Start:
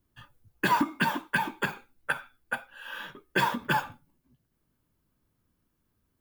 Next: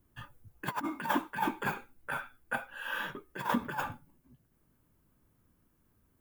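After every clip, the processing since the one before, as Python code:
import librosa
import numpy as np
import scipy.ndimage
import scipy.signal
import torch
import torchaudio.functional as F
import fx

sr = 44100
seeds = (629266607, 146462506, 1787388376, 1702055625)

y = fx.peak_eq(x, sr, hz=4200.0, db=-6.5, octaves=1.3)
y = fx.over_compress(y, sr, threshold_db=-31.0, ratio=-0.5)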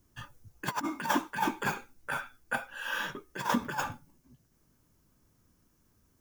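y = fx.peak_eq(x, sr, hz=5900.0, db=12.0, octaves=0.85)
y = y * librosa.db_to_amplitude(1.5)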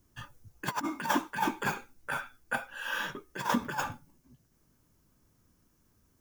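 y = x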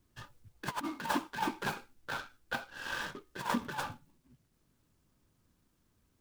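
y = fx.noise_mod_delay(x, sr, seeds[0], noise_hz=1900.0, depth_ms=0.04)
y = y * librosa.db_to_amplitude(-4.0)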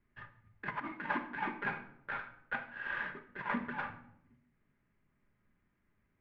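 y = fx.ladder_lowpass(x, sr, hz=2300.0, resonance_pct=60)
y = fx.room_shoebox(y, sr, seeds[1], volume_m3=2000.0, walls='furnished', distance_m=1.3)
y = y * librosa.db_to_amplitude(5.0)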